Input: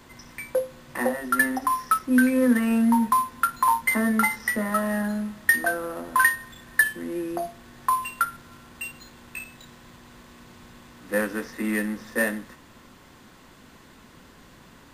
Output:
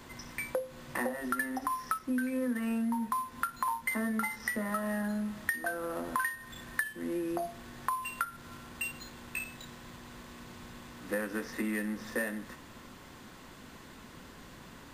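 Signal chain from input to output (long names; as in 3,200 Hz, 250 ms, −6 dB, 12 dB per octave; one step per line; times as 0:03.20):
downward compressor 5 to 1, threshold −31 dBFS, peak gain reduction 15.5 dB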